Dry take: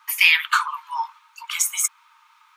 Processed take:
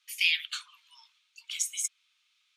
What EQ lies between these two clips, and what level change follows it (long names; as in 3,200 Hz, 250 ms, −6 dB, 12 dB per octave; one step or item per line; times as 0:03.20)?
four-pole ladder high-pass 2,500 Hz, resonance 30%
low-pass filter 9,400 Hz 12 dB per octave
−2.0 dB